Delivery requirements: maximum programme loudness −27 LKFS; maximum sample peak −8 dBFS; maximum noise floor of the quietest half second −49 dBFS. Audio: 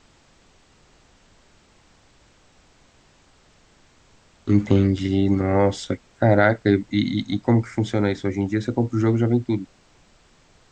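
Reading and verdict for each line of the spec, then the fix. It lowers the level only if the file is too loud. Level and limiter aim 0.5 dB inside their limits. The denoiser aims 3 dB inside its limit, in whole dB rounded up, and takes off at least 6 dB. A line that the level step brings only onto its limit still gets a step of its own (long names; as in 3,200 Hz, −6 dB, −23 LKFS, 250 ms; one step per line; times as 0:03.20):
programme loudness −21.5 LKFS: out of spec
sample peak −4.0 dBFS: out of spec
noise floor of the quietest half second −56 dBFS: in spec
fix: level −6 dB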